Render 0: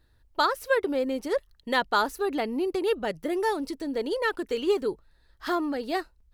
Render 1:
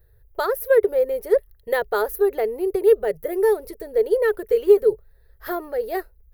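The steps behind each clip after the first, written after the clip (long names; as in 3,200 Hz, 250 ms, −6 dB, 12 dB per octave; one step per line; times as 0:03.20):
drawn EQ curve 120 Hz 0 dB, 280 Hz −25 dB, 420 Hz +5 dB, 1,000 Hz −13 dB, 1,900 Hz −7 dB, 2,900 Hz −17 dB, 7,700 Hz −14 dB, 14,000 Hz +10 dB
level +8 dB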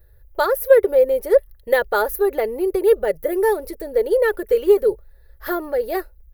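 comb filter 3.5 ms, depth 42%
level +3.5 dB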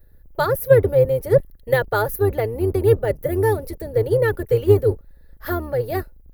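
sub-octave generator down 2 octaves, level +3 dB
level −1.5 dB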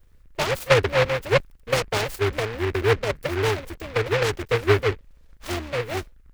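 short delay modulated by noise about 1,500 Hz, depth 0.18 ms
level −4.5 dB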